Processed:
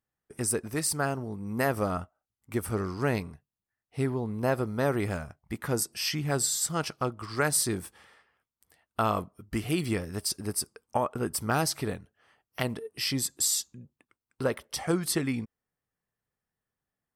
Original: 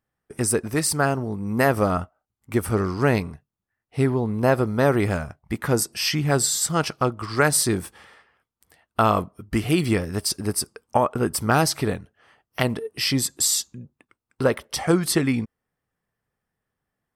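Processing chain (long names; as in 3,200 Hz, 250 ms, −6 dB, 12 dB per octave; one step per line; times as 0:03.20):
high-shelf EQ 5,700 Hz +4 dB
level −8 dB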